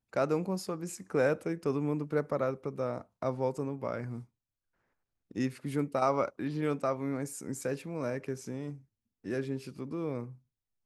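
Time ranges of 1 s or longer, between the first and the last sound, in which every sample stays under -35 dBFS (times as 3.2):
4.19–5.36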